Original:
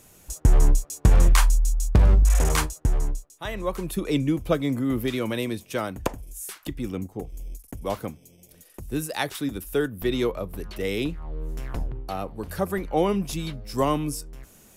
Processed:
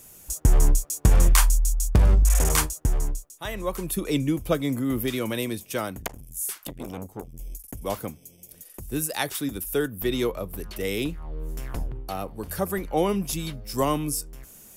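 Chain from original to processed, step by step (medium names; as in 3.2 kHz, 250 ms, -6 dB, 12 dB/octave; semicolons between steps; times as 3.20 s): treble shelf 7.1 kHz +11 dB; band-stop 4 kHz, Q 25; 6.00–7.39 s: transformer saturation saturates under 1.8 kHz; trim -1 dB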